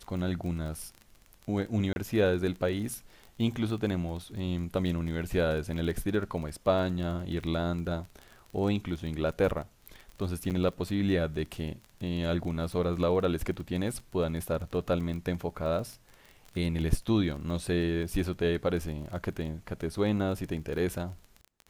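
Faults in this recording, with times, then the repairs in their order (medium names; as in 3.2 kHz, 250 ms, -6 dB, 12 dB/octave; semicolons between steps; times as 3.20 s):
crackle 25 per s -36 dBFS
1.93–1.96 s: dropout 31 ms
10.50–10.51 s: dropout 8.1 ms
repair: de-click; interpolate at 1.93 s, 31 ms; interpolate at 10.50 s, 8.1 ms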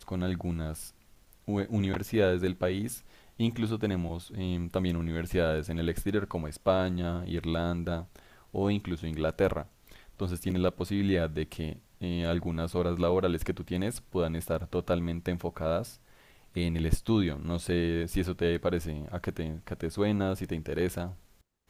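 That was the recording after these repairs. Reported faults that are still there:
nothing left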